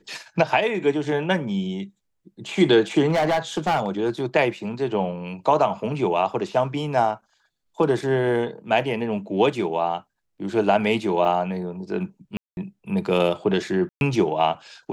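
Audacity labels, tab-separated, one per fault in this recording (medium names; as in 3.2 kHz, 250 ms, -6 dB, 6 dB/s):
3.080000	4.260000	clipped -17 dBFS
11.250000	11.250000	dropout 3.1 ms
12.370000	12.570000	dropout 201 ms
13.890000	14.010000	dropout 121 ms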